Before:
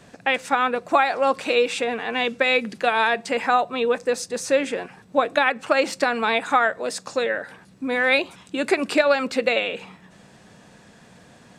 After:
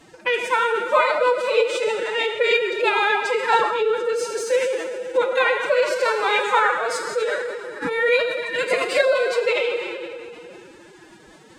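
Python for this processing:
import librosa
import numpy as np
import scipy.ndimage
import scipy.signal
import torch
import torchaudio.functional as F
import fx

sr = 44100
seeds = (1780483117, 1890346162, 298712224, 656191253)

y = fx.rev_plate(x, sr, seeds[0], rt60_s=2.7, hf_ratio=0.75, predelay_ms=0, drr_db=1.5)
y = fx.pitch_keep_formants(y, sr, semitones=10.5)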